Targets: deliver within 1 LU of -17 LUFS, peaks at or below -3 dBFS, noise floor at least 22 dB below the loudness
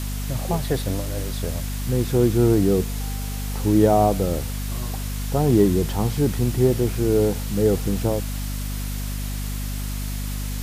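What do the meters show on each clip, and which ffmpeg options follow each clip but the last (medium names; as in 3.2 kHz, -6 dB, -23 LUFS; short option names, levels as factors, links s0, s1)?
hum 50 Hz; highest harmonic 250 Hz; hum level -25 dBFS; noise floor -28 dBFS; noise floor target -45 dBFS; loudness -22.5 LUFS; peak level -4.0 dBFS; loudness target -17.0 LUFS
-> -af "bandreject=f=50:t=h:w=6,bandreject=f=100:t=h:w=6,bandreject=f=150:t=h:w=6,bandreject=f=200:t=h:w=6,bandreject=f=250:t=h:w=6"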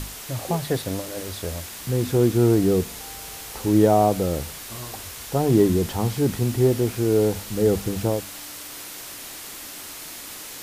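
hum not found; noise floor -38 dBFS; noise floor target -45 dBFS
-> -af "afftdn=nr=7:nf=-38"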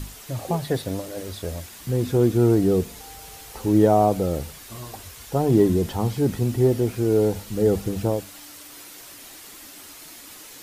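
noise floor -43 dBFS; noise floor target -45 dBFS
-> -af "afftdn=nr=6:nf=-43"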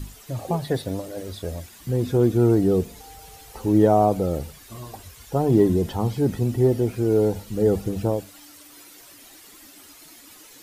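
noise floor -48 dBFS; loudness -22.0 LUFS; peak level -5.0 dBFS; loudness target -17.0 LUFS
-> -af "volume=1.78,alimiter=limit=0.708:level=0:latency=1"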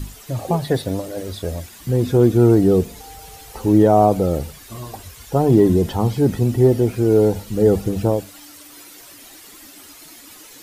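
loudness -17.5 LUFS; peak level -3.0 dBFS; noise floor -43 dBFS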